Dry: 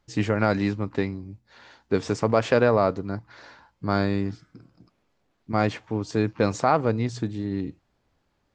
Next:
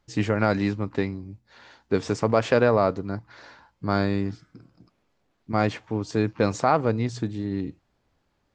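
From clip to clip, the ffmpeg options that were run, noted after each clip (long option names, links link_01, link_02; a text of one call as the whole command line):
ffmpeg -i in.wav -af anull out.wav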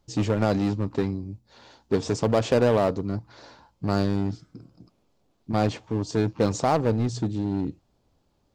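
ffmpeg -i in.wav -filter_complex "[0:a]equalizer=frequency=1800:width=1.1:gain=-11,asplit=2[link_01][link_02];[link_02]aeval=exprs='0.0531*(abs(mod(val(0)/0.0531+3,4)-2)-1)':channel_layout=same,volume=-5dB[link_03];[link_01][link_03]amix=inputs=2:normalize=0" out.wav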